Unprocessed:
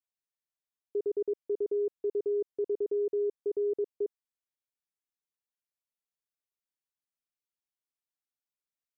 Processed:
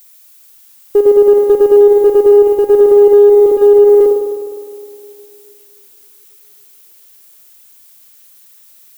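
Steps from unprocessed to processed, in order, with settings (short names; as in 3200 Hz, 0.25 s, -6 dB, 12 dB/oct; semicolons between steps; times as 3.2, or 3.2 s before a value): reverse delay 0.258 s, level -12.5 dB; crackle 200/s -64 dBFS; in parallel at -8 dB: one-sided clip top -37 dBFS, bottom -26.5 dBFS; on the sum: added noise violet -59 dBFS; on a send: narrowing echo 0.279 s, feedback 68%, band-pass 330 Hz, level -24 dB; on the sum: spring tank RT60 2.4 s, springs 51 ms, chirp 25 ms, DRR 0 dB; maximiser +21 dB; upward expander 1.5:1, over -16 dBFS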